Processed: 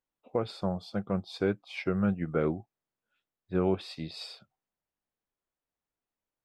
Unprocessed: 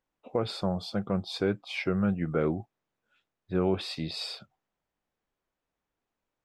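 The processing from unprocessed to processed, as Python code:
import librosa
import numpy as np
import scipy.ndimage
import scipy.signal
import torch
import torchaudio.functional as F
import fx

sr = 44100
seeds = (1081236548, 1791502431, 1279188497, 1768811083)

y = fx.upward_expand(x, sr, threshold_db=-40.0, expansion=1.5)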